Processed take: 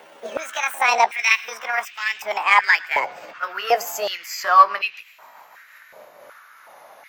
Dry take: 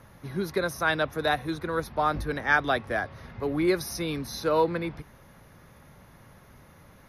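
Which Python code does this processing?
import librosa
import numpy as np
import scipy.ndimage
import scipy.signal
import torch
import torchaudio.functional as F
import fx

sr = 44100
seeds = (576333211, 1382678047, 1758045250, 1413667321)

p1 = fx.pitch_glide(x, sr, semitones=8.5, runs='ending unshifted')
p2 = 10.0 ** (-22.0 / 20.0) * np.tanh(p1 / 10.0 ** (-22.0 / 20.0))
p3 = p1 + (p2 * librosa.db_to_amplitude(-5.0))
p4 = p3 + 10.0 ** (-23.5 / 20.0) * np.pad(p3, (int(110 * sr / 1000.0), 0))[:len(p3)]
p5 = fx.filter_held_highpass(p4, sr, hz=2.7, low_hz=570.0, high_hz=2600.0)
y = p5 * librosa.db_to_amplitude(3.0)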